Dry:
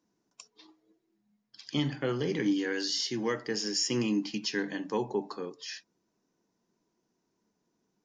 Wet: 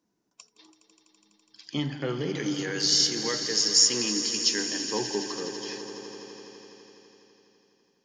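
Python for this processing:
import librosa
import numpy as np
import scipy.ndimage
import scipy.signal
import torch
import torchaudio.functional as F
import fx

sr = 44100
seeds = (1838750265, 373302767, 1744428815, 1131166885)

y = fx.bass_treble(x, sr, bass_db=-9, treble_db=14, at=(2.35, 4.83))
y = fx.echo_swell(y, sr, ms=83, loudest=5, wet_db=-14.5)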